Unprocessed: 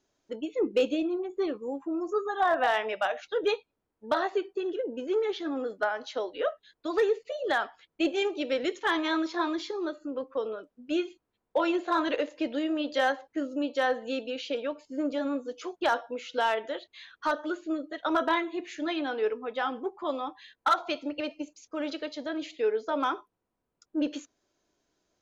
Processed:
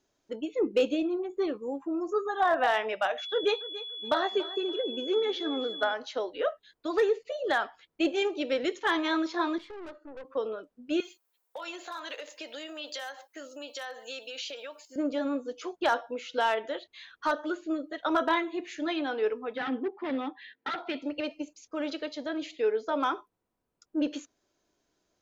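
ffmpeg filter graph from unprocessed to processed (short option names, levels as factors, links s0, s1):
-filter_complex "[0:a]asettb=1/sr,asplit=3[s0][s1][s2];[s0]atrim=end=3.184[s3];[s1]atrim=start=3.18:end=5.94,asetpts=PTS-STARTPTS,afade=t=in:d=0.004:c=qsin,afade=t=out:st=2.756:d=0.004:c=qsin,aeval=exprs='val(0)+0.0158*sin(2*PI*3400*n/s)':c=same,aecho=1:1:284|568:0.158|0.0396,atrim=end_sample=121716[s4];[s2]atrim=start=5.936[s5];[s3][s4]acrossfade=d=0.004:c1=hsin:c2=qsin[s6];[s6][s5]acrossfade=d=0.004:c1=qsin:c2=hsin,asettb=1/sr,asplit=3[s7][s8][s9];[s7]atrim=end=9.584[s10];[s8]atrim=start=9.58:end=10.25,asetpts=PTS-STARTPTS,afade=t=in:d=0.004:c=qsin,afade=t=out:st=0.666:d=0.004:c=qsin,highpass=420,lowpass=2100,aeval=exprs='(tanh(100*val(0)+0.5)-tanh(0.5))/100':c=same[s11];[s9]atrim=start=10.246[s12];[s10][s11]acrossfade=d=0.004:c1=hsin:c2=qsin[s13];[s13][s12]acrossfade=d=0.004:c1=qsin:c2=hsin,asettb=1/sr,asplit=3[s14][s15][s16];[s14]atrim=end=11.004[s17];[s15]atrim=start=11:end=14.96,asetpts=PTS-STARTPTS,afade=t=in:d=0.004:c=qsin,afade=t=out:st=3.956:d=0.004:c=qsin,highpass=620,acompressor=threshold=0.0126:ratio=4:attack=3.2:release=140:knee=1:detection=peak,aemphasis=mode=production:type=75fm[s18];[s16]atrim=start=14.956[s19];[s17][s18]acrossfade=d=0.004:c1=hsin:c2=qsin[s20];[s20][s19]acrossfade=d=0.004:c1=qsin:c2=hsin,asettb=1/sr,asplit=3[s21][s22][s23];[s21]atrim=end=19.554[s24];[s22]atrim=start=19.55:end=21.02,asetpts=PTS-STARTPTS,afade=t=in:d=0.004:c=qsin,afade=t=out:st=1.466:d=0.004:c=qsin,asoftclip=type=hard:threshold=0.0316,highpass=150,equalizer=f=260:t=q:w=4:g=9,equalizer=f=420:t=q:w=4:g=5,equalizer=f=620:t=q:w=4:g=-4,equalizer=f=1100:t=q:w=4:g=-7,equalizer=f=1900:t=q:w=4:g=8,lowpass=f=4000:w=0.5412,lowpass=f=4000:w=1.3066[s25];[s23]atrim=start=21.016[s26];[s24][s25]acrossfade=d=0.004:c1=hsin:c2=qsin[s27];[s27][s26]acrossfade=d=0.004:c1=qsin:c2=hsin"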